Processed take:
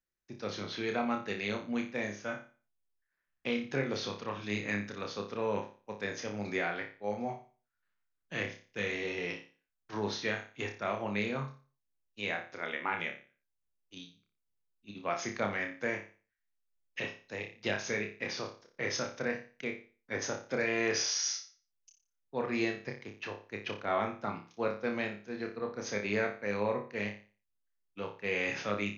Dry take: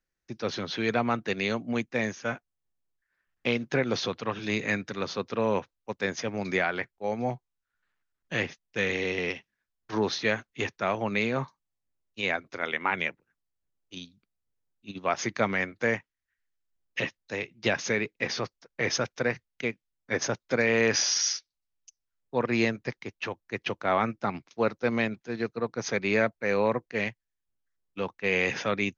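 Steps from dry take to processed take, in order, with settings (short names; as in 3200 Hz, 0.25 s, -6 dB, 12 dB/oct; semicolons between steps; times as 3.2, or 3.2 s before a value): notches 60/120 Hz; flutter echo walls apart 5 m, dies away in 0.37 s; gain -8 dB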